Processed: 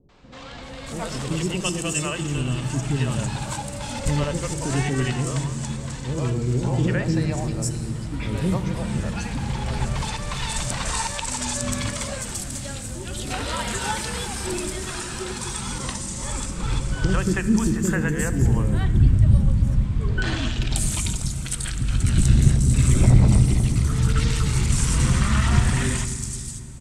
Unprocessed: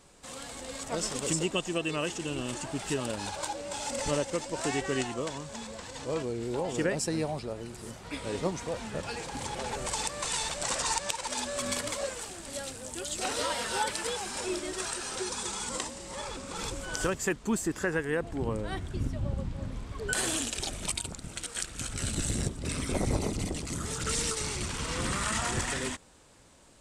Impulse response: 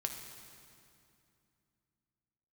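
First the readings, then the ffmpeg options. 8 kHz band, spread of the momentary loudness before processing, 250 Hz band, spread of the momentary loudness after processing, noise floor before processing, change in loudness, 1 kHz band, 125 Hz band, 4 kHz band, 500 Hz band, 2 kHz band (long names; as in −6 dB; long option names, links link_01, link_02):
+4.5 dB, 9 LU, +10.0 dB, 11 LU, −47 dBFS, +9.0 dB, +4.0 dB, +17.5 dB, +3.5 dB, +2.0 dB, +5.0 dB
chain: -filter_complex "[0:a]acrossover=split=440|4900[link_01][link_02][link_03];[link_02]adelay=90[link_04];[link_03]adelay=630[link_05];[link_01][link_04][link_05]amix=inputs=3:normalize=0,asplit=2[link_06][link_07];[link_07]asubboost=boost=7:cutoff=230[link_08];[1:a]atrim=start_sample=2205[link_09];[link_08][link_09]afir=irnorm=-1:irlink=0,volume=-0.5dB[link_10];[link_06][link_10]amix=inputs=2:normalize=0"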